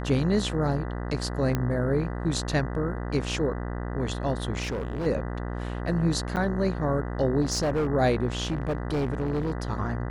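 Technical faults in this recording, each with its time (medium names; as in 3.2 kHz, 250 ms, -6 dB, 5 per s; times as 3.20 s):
buzz 60 Hz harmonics 33 -32 dBFS
1.55 s: pop -13 dBFS
4.62–5.07 s: clipped -26.5 dBFS
6.36–6.37 s: dropout 8.4 ms
7.41–7.88 s: clipped -21.5 dBFS
8.43–9.52 s: clipped -23 dBFS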